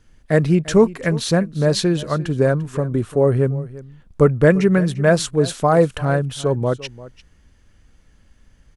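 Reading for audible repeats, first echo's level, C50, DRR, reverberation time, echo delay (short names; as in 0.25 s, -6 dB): 1, -18.0 dB, none, none, none, 0.345 s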